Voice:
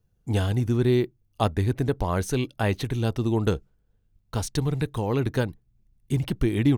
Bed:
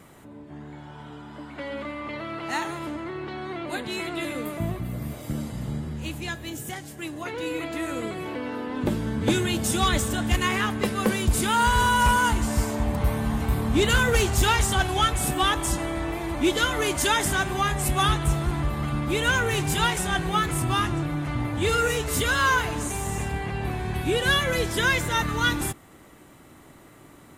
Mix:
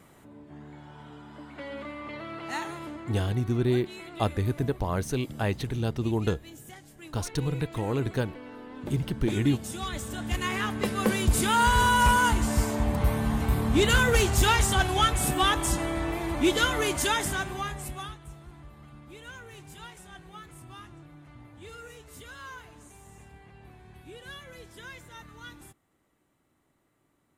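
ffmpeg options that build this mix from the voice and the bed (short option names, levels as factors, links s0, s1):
-filter_complex "[0:a]adelay=2800,volume=0.668[s0];[1:a]volume=2,afade=t=out:st=2.72:d=0.69:silence=0.446684,afade=t=in:st=9.92:d=1.31:silence=0.281838,afade=t=out:st=16.66:d=1.5:silence=0.0891251[s1];[s0][s1]amix=inputs=2:normalize=0"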